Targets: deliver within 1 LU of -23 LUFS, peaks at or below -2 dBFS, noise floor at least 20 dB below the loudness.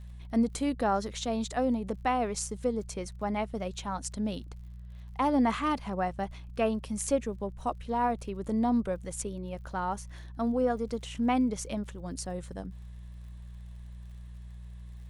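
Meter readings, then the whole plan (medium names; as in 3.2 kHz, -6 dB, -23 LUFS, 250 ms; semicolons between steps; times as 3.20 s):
tick rate 50 per s; hum 60 Hz; highest harmonic 180 Hz; hum level -42 dBFS; loudness -31.5 LUFS; peak level -14.5 dBFS; loudness target -23.0 LUFS
-> de-click; de-hum 60 Hz, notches 3; trim +8.5 dB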